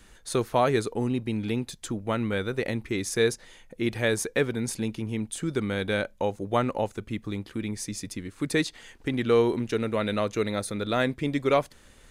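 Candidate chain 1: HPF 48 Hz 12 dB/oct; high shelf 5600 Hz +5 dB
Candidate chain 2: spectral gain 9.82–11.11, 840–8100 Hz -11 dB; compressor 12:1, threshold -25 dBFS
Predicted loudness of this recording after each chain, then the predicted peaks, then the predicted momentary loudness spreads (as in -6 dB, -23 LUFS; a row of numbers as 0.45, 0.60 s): -28.0, -32.0 LUFS; -9.0, -15.0 dBFS; 9, 4 LU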